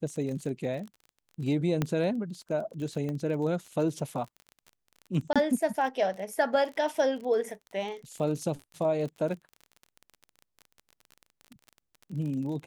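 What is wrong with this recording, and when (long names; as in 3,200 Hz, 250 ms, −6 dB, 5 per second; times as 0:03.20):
surface crackle 30 per second −37 dBFS
0:01.82: click −14 dBFS
0:03.09: click −24 dBFS
0:05.33–0:05.36: drop-out 26 ms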